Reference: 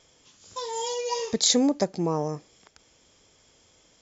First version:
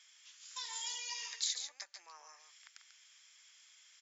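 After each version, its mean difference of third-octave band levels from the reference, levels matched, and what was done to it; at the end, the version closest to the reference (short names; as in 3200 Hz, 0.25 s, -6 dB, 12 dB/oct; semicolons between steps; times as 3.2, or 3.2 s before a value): 12.0 dB: compressor 8:1, threshold -31 dBFS, peak gain reduction 14 dB; ladder high-pass 1400 Hz, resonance 30%; on a send: echo 0.142 s -7.5 dB; on the sum: gain +4.5 dB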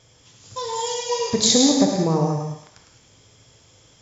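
5.0 dB: bell 110 Hz +12.5 dB 0.87 oct; on a send: thinning echo 0.105 s, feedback 50%, high-pass 760 Hz, level -7 dB; on the sum: non-linear reverb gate 0.23 s flat, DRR 1.5 dB; gain +2.5 dB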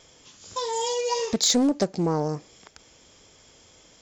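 2.5 dB: in parallel at 0 dB: compressor, threshold -33 dBFS, peak gain reduction 15 dB; on the sum: soft clip -11 dBFS, distortion -21 dB; Doppler distortion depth 0.26 ms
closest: third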